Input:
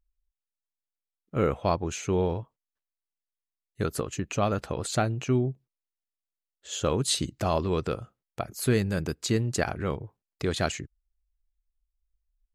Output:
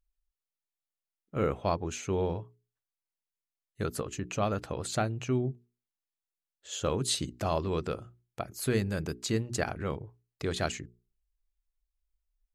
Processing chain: hum notches 60/120/180/240/300/360/420 Hz; trim -3.5 dB

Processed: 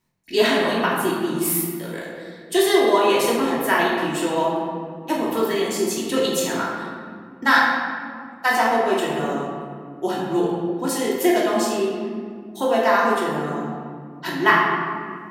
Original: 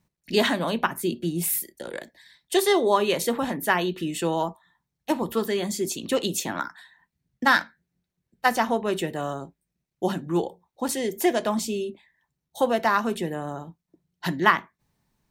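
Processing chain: bass shelf 170 Hz -9.5 dB; band-stop 590 Hz, Q 12; reverberation RT60 2.1 s, pre-delay 3 ms, DRR -5.5 dB; trim -1 dB

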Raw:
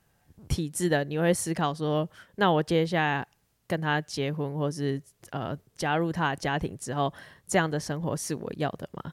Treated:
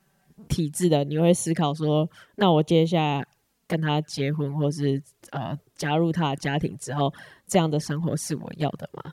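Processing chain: resonant low shelf 110 Hz -6 dB, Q 1.5; touch-sensitive flanger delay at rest 5.3 ms, full sweep at -22.5 dBFS; trim +5 dB

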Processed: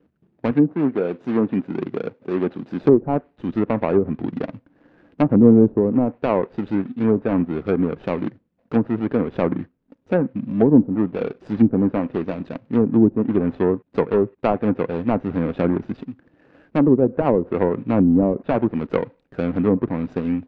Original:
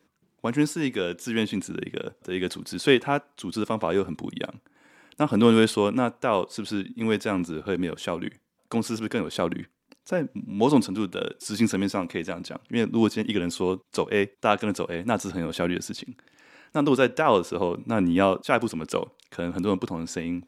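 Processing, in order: median filter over 41 samples; 0.51–2.83 s: high-pass 140 Hz 12 dB/octave; low-pass that closes with the level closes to 450 Hz, closed at -19 dBFS; low-pass 3 kHz 12 dB/octave; trim +8 dB

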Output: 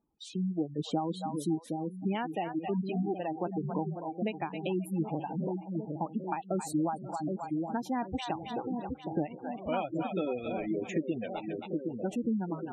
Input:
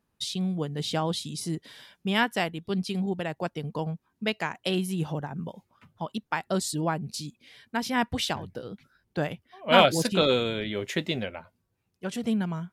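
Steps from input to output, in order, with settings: reverb removal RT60 1.1 s; level rider gain up to 8 dB; two-band feedback delay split 620 Hz, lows 767 ms, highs 267 ms, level -9 dB; spectral gate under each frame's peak -20 dB strong; graphic EQ with 31 bands 100 Hz -12 dB, 315 Hz +11 dB, 800 Hz +11 dB, 1.25 kHz +4 dB, 2.5 kHz +10 dB, 5 kHz -8 dB, 10 kHz -5 dB; compression 3:1, threshold -25 dBFS, peak gain reduction 14.5 dB; peaking EQ 2.6 kHz -11 dB 2.8 oct; spectral gate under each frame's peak -25 dB strong; trim -4 dB

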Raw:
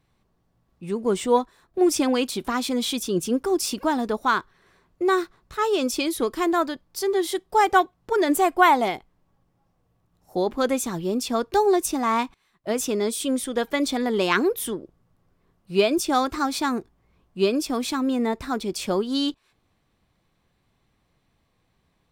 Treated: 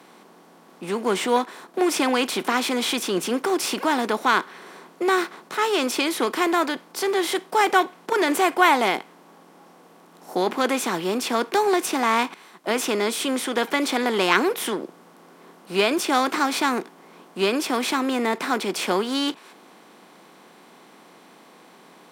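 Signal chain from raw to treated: spectral levelling over time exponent 0.6; dynamic bell 2.3 kHz, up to +6 dB, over -37 dBFS, Q 1; steep high-pass 170 Hz; trim -4 dB

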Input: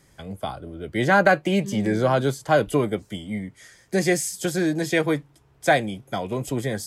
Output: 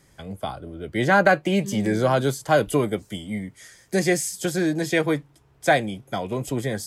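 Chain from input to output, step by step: 1.60–4.00 s: treble shelf 5.9 kHz +6 dB

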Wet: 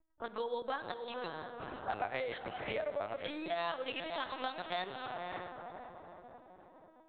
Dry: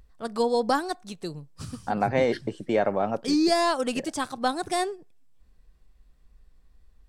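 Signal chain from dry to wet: 1.87–4.04 s: high-pass 200 Hz 6 dB/octave; echo that smears into a reverb 534 ms, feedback 50%, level -10.5 dB; dynamic bell 590 Hz, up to +6 dB, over -40 dBFS, Q 8; LPC vocoder at 8 kHz pitch kept; level-controlled noise filter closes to 660 Hz, open at -23.5 dBFS; compression 6:1, threshold -30 dBFS, peak gain reduction 12.5 dB; tilt EQ +4 dB/octave; reverberation RT60 0.90 s, pre-delay 43 ms, DRR 14.5 dB; trim -1 dB

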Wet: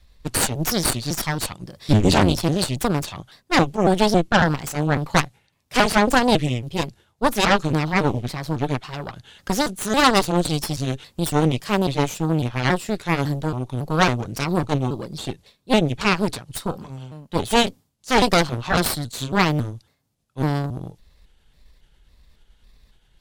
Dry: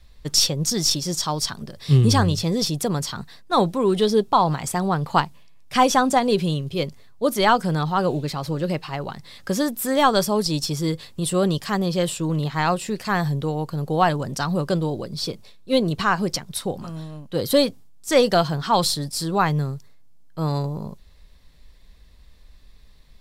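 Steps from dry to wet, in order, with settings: pitch shift switched off and on -3.5 st, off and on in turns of 276 ms; Chebyshev shaper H 3 -15 dB, 5 -25 dB, 6 -9 dB, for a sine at -3.5 dBFS

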